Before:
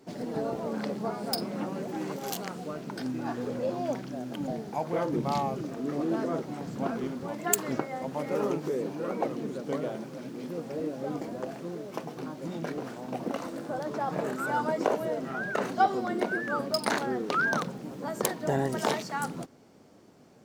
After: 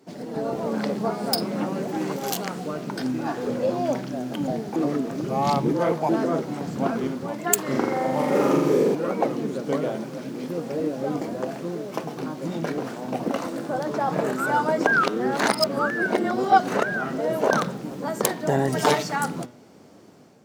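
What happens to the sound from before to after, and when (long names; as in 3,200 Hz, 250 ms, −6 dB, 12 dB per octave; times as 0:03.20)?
0:04.76–0:06.09: reverse
0:07.63–0:08.95: flutter between parallel walls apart 7.3 metres, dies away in 1.1 s
0:14.87–0:17.51: reverse
0:18.67–0:19.16: comb filter 6.8 ms, depth 82%
whole clip: high-pass filter 72 Hz; hum removal 121.5 Hz, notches 32; automatic gain control gain up to 6 dB; level +1 dB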